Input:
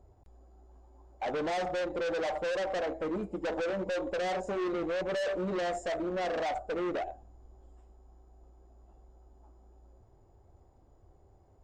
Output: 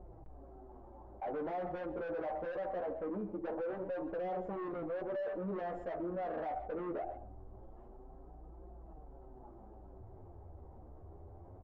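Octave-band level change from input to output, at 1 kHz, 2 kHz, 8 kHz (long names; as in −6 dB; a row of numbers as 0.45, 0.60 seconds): −5.5 dB, −12.5 dB, below −25 dB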